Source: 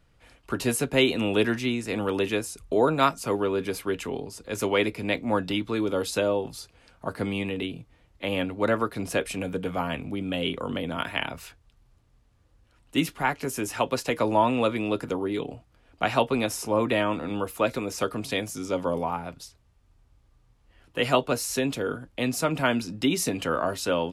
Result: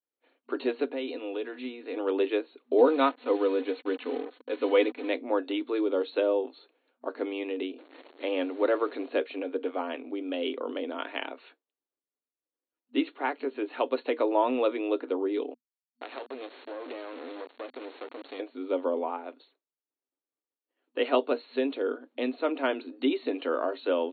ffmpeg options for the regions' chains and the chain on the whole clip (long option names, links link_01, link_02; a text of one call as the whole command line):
ffmpeg -i in.wav -filter_complex "[0:a]asettb=1/sr,asplit=3[link_01][link_02][link_03];[link_01]atrim=end=0.874[link_04];[link_02]atrim=start=0.87:end=1.97,asetpts=PTS-STARTPTS,afade=type=in:duration=0.004:curve=qsin,afade=type=out:start_time=1.096:duration=0.004:curve=qsin,aecho=1:1:4.1:0.45,atrim=end_sample=48510,acompressor=threshold=-31dB:ratio=3:attack=3.2:release=140:knee=1:detection=peak[link_05];[link_03]atrim=start=1.966[link_06];[link_04][link_05]acrossfade=duration=0.004:curve1=hsin:curve2=qsin[link_07];[link_07][link_06]acrossfade=duration=0.004:curve1=qsin:curve2=hsin,asettb=1/sr,asplit=3[link_08][link_09][link_10];[link_08]atrim=end=2.784[link_11];[link_09]atrim=start=2.78:end=5.09,asetpts=PTS-STARTPTS,afade=type=in:duration=0.004:curve=qsin,afade=type=out:start_time=2.306:duration=0.004:curve=qsin,acrusher=bits=5:mix=0:aa=0.5,aecho=1:1:4:0.61,atrim=end_sample=101871[link_12];[link_10]atrim=start=5.086[link_13];[link_11][link_12]acrossfade=duration=0.004:curve1=hsin:curve2=qsin[link_14];[link_14][link_13]acrossfade=duration=0.004:curve1=qsin:curve2=hsin,asettb=1/sr,asplit=3[link_15][link_16][link_17];[link_15]atrim=end=7.784[link_18];[link_16]atrim=start=7.78:end=9.06,asetpts=PTS-STARTPTS,afade=type=in:duration=0.004:curve=qsin,afade=type=out:start_time=1.276:duration=0.004:curve=qsin,aeval=exprs='val(0)+0.5*0.0119*sgn(val(0))':channel_layout=same,highpass=frequency=44:poles=1,acrusher=bits=7:mix=0:aa=0.5[link_19];[link_17]atrim=start=9.056[link_20];[link_18][link_19]acrossfade=duration=0.004:curve1=hsin:curve2=qsin[link_21];[link_21][link_20]acrossfade=duration=0.004:curve1=qsin:curve2=hsin,asettb=1/sr,asplit=3[link_22][link_23][link_24];[link_22]atrim=end=15.544[link_25];[link_23]atrim=start=15.54:end=18.4,asetpts=PTS-STARTPTS,afade=type=in:duration=0.004:curve=qsin,afade=type=out:start_time=2.856:duration=0.004:curve=qsin,highpass=frequency=160:poles=1,acrusher=bits=3:dc=4:mix=0:aa=0.000001,acompressor=threshold=-30dB:ratio=4:attack=3.2:release=140:knee=1:detection=peak[link_26];[link_24]atrim=start=18.396[link_27];[link_25][link_26]acrossfade=duration=0.004:curve1=hsin:curve2=qsin[link_28];[link_28][link_27]acrossfade=duration=0.004:curve1=qsin:curve2=hsin,equalizer=frequency=420:width_type=o:width=1.5:gain=8,agate=range=-33dB:threshold=-45dB:ratio=3:detection=peak,afftfilt=real='re*between(b*sr/4096,240,4400)':imag='im*between(b*sr/4096,240,4400)':win_size=4096:overlap=0.75,volume=-7dB" out.wav